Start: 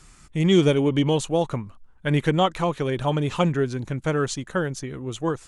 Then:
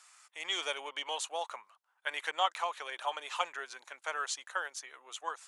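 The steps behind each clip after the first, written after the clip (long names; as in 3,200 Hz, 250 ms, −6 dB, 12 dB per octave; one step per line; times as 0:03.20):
high-pass filter 770 Hz 24 dB per octave
level −5 dB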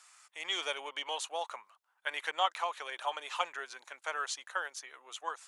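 dynamic equaliser 7,700 Hz, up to −3 dB, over −54 dBFS, Q 2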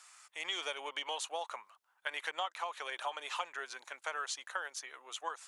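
downward compressor 4 to 1, threshold −36 dBFS, peak gain reduction 11 dB
level +1.5 dB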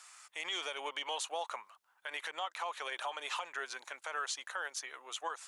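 brickwall limiter −29.5 dBFS, peak gain reduction 9.5 dB
level +2.5 dB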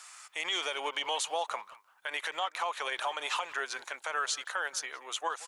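far-end echo of a speakerphone 180 ms, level −16 dB
level +5.5 dB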